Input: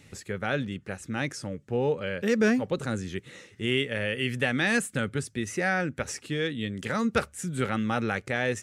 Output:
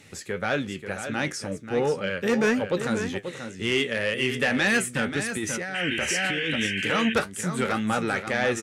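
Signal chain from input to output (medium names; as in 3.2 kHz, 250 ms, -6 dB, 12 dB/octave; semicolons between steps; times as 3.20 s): flange 1.9 Hz, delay 9.2 ms, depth 4.4 ms, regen +62%; in parallel at -7.5 dB: sine folder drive 9 dB, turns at -14 dBFS; on the sum: bass shelf 130 Hz -11 dB; on a send: delay 535 ms -9 dB; 5.32–6.67 s: on the sum: compressor with a negative ratio -29 dBFS, ratio -1; 5.74–7.14 s: painted sound noise 1.5–3.2 kHz -30 dBFS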